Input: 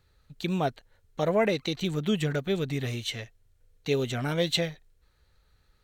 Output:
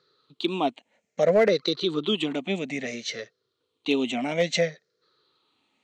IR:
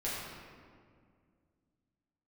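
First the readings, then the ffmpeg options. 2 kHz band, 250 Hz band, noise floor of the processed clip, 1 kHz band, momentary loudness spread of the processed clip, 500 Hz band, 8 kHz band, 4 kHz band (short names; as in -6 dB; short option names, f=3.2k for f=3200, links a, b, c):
+3.5 dB, +2.0 dB, -78 dBFS, +2.5 dB, 13 LU, +4.5 dB, +2.0 dB, +3.0 dB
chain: -af "afftfilt=real='re*pow(10,13/40*sin(2*PI*(0.59*log(max(b,1)*sr/1024/100)/log(2)-(-0.6)*(pts-256)/sr)))':imag='im*pow(10,13/40*sin(2*PI*(0.59*log(max(b,1)*sr/1024/100)/log(2)-(-0.6)*(pts-256)/sr)))':win_size=1024:overlap=0.75,highpass=f=210:w=0.5412,highpass=f=210:w=1.3066,equalizer=f=840:t=q:w=4:g=-5,equalizer=f=1.6k:t=q:w=4:g=-7,equalizer=f=5.5k:t=q:w=4:g=-3,lowpass=f=6.5k:w=0.5412,lowpass=f=6.5k:w=1.3066,volume=15.5dB,asoftclip=hard,volume=-15.5dB,volume=3dB"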